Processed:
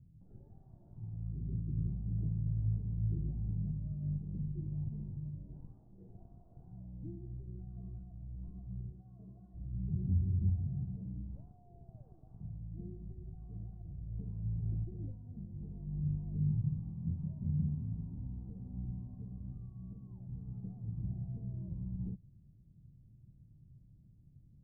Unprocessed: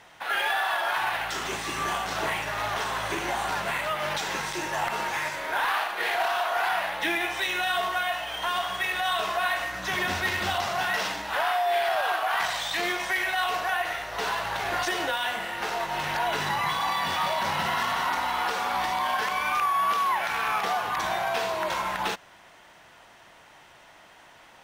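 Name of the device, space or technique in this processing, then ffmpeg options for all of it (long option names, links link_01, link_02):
the neighbour's flat through the wall: -filter_complex "[0:a]asettb=1/sr,asplit=3[link_01][link_02][link_03];[link_01]atrim=end=8.924[link_04];[link_02]atrim=start=8.92:end=9.54,asetpts=PTS-STARTPTS,afade=type=in:duration=0.004:curve=qsin,afade=type=out:start_time=0.616:duration=0.004:curve=qsin,highpass=frequency=290:poles=1[link_05];[link_03]atrim=start=9.536[link_06];[link_04][link_05]acrossfade=duration=0.004:curve1=hsin:curve2=qsin[link_07];[link_07][link_06]acrossfade=duration=0.004:curve1=qsin:curve2=hsin,lowpass=frequency=160:width=0.5412,lowpass=frequency=160:width=1.3066,equalizer=frequency=120:width_type=o:width=0.51:gain=5,volume=8.5dB"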